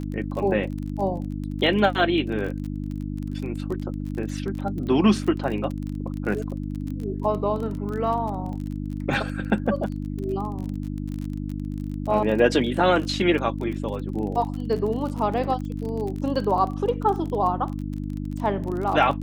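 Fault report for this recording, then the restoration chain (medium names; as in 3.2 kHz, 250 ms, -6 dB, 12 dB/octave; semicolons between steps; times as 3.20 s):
crackle 30 per s -30 dBFS
hum 50 Hz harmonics 6 -30 dBFS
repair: de-click; de-hum 50 Hz, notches 6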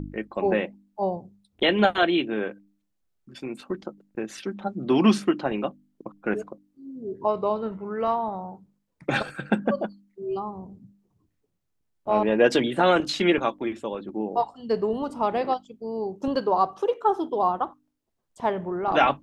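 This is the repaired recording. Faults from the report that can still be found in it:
nothing left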